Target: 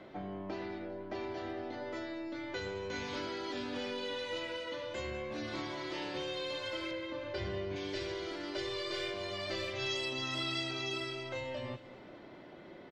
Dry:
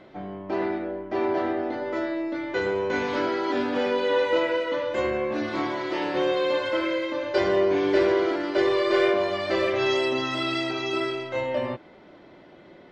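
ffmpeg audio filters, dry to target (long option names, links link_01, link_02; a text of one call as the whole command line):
ffmpeg -i in.wav -filter_complex "[0:a]asettb=1/sr,asplit=3[link_01][link_02][link_03];[link_01]atrim=end=6.914[link_04];[link_02]atrim=start=6.91:end=7.76,asetpts=PTS-STARTPTS,afade=type=in:duration=0.004:curve=qsin,afade=type=out:start_time=0.846:duration=0.004:curve=qsin,bass=frequency=250:gain=5,treble=frequency=4000:gain=-13[link_05];[link_03]atrim=start=7.756[link_06];[link_04][link_05]acrossfade=duration=0.004:curve1=hsin:curve2=qsin[link_07];[link_07][link_06]acrossfade=duration=0.004:curve1=qsin:curve2=hsin,acrossover=split=130|3000[link_08][link_09][link_10];[link_09]acompressor=threshold=-37dB:ratio=6[link_11];[link_08][link_11][link_10]amix=inputs=3:normalize=0,aecho=1:1:199|398|597|796|995:0.141|0.0791|0.0443|0.0248|0.0139,volume=-2.5dB" out.wav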